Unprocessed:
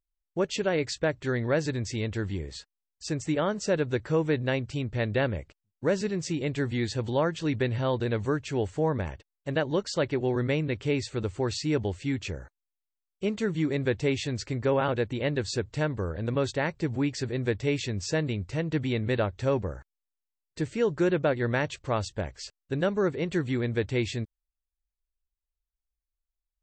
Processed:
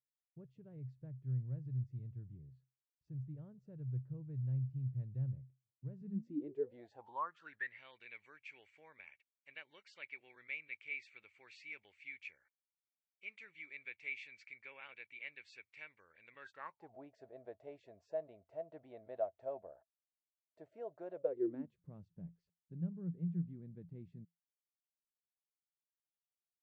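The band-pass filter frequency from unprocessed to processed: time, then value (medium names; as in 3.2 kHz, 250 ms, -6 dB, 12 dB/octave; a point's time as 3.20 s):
band-pass filter, Q 16
5.93 s 130 Hz
6.84 s 660 Hz
7.82 s 2.3 kHz
16.26 s 2.3 kHz
16.94 s 660 Hz
21.12 s 660 Hz
21.83 s 170 Hz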